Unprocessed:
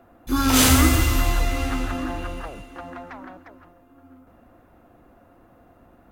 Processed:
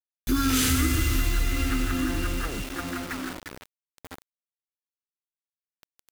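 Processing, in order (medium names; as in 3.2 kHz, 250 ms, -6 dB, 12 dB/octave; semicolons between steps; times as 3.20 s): high-order bell 750 Hz -12.5 dB 1.2 oct; in parallel at +2.5 dB: peak limiter -11.5 dBFS, peak gain reduction 7 dB; on the sum: compression 3:1, threshold -24 dBFS, peak gain reduction 12.5 dB; bit crusher 6-bit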